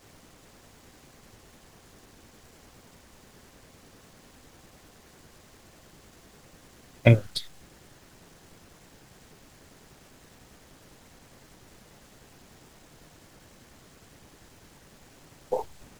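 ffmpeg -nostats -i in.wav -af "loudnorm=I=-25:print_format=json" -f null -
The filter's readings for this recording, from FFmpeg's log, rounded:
"input_i" : "-26.5",
"input_tp" : "-3.5",
"input_lra" : "23.9",
"input_thresh" : "-47.1",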